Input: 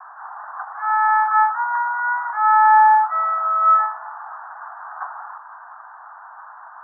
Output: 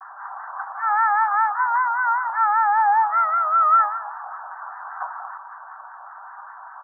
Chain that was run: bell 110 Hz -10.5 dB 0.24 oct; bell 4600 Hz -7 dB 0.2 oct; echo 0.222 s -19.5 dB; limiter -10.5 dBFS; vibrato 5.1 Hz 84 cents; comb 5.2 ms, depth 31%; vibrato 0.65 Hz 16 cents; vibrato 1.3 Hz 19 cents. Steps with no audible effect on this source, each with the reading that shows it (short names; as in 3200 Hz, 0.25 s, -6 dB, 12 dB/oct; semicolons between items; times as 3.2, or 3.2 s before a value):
bell 110 Hz: input band starts at 640 Hz; bell 4600 Hz: input band ends at 1800 Hz